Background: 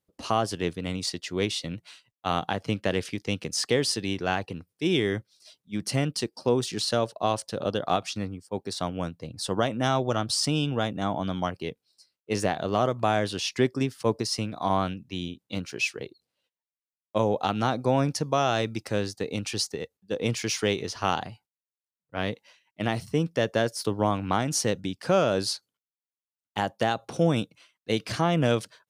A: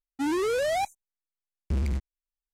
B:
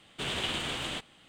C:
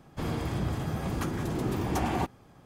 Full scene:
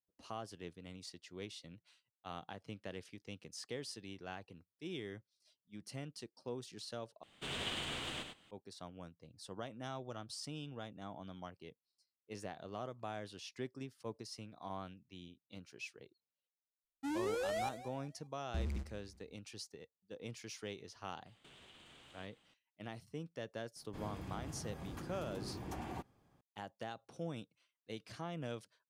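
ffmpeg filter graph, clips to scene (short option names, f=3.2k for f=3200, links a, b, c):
-filter_complex "[2:a]asplit=2[a][b];[0:a]volume=-20dB[c];[a]aecho=1:1:99:0.501[d];[1:a]aecho=1:1:194|388|582:0.178|0.064|0.023[e];[b]acompressor=threshold=-45dB:ratio=6:attack=3.2:release=140:knee=1:detection=peak[f];[3:a]bandreject=f=1.3k:w=30[g];[c]asplit=2[h][i];[h]atrim=end=7.234[j];[d]atrim=end=1.28,asetpts=PTS-STARTPTS,volume=-8.5dB[k];[i]atrim=start=8.506[l];[e]atrim=end=2.53,asetpts=PTS-STARTPTS,volume=-11.5dB,afade=t=in:d=0.004:c=hsin,afade=t=out:st=2.526:d=0.004:c=hsin,adelay=742644S[m];[f]atrim=end=1.28,asetpts=PTS-STARTPTS,volume=-13dB,afade=t=in:d=0.004:c=hsin,afade=t=out:st=1.276:d=0.004:c=hsin,adelay=21260[n];[g]atrim=end=2.65,asetpts=PTS-STARTPTS,volume=-15.5dB,afade=t=in:d=0.004:c=hsin,afade=t=out:st=2.646:d=0.004:c=hsin,adelay=23760[o];[j][k]acrossfade=d=0.004:c1=hsin:c2=hsin[p];[p][l]acrossfade=d=0.004:c1=hsin:c2=hsin[q];[q][m][n][o]amix=inputs=4:normalize=0"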